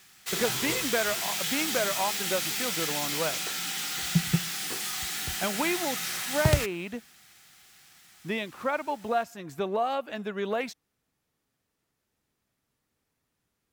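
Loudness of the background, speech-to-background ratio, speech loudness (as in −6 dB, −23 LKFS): −29.0 LKFS, −2.5 dB, −31.5 LKFS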